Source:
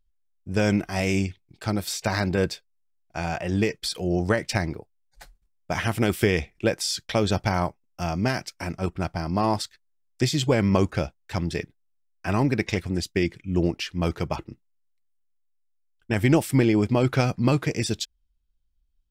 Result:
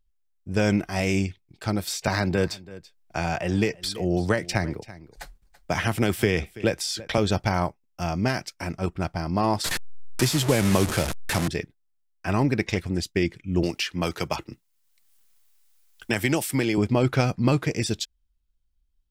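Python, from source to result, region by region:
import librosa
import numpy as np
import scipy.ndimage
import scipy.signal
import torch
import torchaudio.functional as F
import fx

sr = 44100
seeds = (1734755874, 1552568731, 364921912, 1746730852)

y = fx.chain(x, sr, fx.echo_single(ms=332, db=-21.5),
    fx.band_squash(depth_pct=40), at=(2.07, 7.18))
y = fx.chain(y, sr, fx.delta_mod(bps=64000, step_db=-23.0),
    fx.high_shelf(hz=10000.0, db=9.5),
    fx.band_squash(depth_pct=40), at=(9.64, 11.48))
y = fx.chain(y, sr, fx.tilt_eq(slope=2.0),
    fx.band_squash(depth_pct=70), at=(13.63, 16.78))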